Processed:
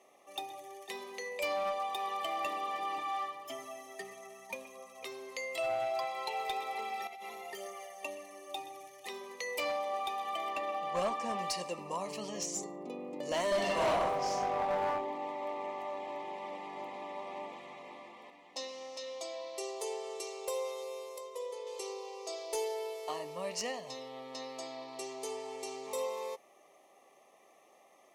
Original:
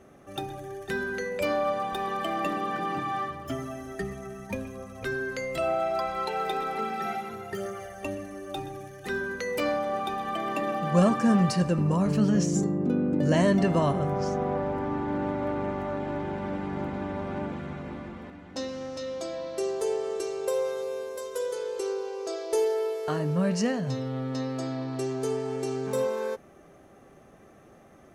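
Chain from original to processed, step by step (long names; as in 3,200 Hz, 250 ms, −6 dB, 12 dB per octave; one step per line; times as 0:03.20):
Butterworth band-reject 1,500 Hz, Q 2
0:07.07–0:07.53: compressor whose output falls as the input rises −39 dBFS, ratio −1
0:10.50–0:11.39: high-shelf EQ 6,400 Hz −10.5 dB
high-pass filter 750 Hz 12 dB per octave
0:13.47–0:14.85: thrown reverb, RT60 1 s, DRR −5.5 dB
0:21.18–0:21.67: high-shelf EQ 2,900 Hz −11.5 dB
asymmetric clip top −28 dBFS
level −1.5 dB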